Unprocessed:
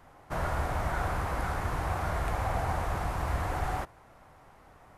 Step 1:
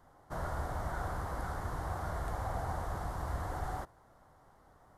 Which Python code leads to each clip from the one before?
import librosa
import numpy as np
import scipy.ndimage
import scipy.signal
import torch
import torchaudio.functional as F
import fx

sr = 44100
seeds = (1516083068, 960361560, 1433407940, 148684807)

y = fx.peak_eq(x, sr, hz=2500.0, db=-14.5, octaves=0.47)
y = F.gain(torch.from_numpy(y), -6.0).numpy()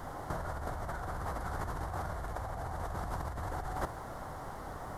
y = fx.over_compress(x, sr, threshold_db=-47.0, ratio=-1.0)
y = F.gain(torch.from_numpy(y), 9.5).numpy()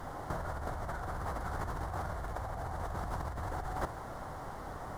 y = scipy.ndimage.median_filter(x, 3, mode='constant')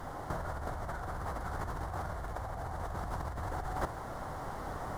y = fx.rider(x, sr, range_db=10, speed_s=2.0)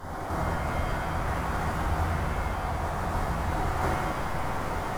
y = fx.rev_shimmer(x, sr, seeds[0], rt60_s=2.1, semitones=7, shimmer_db=-8, drr_db=-8.0)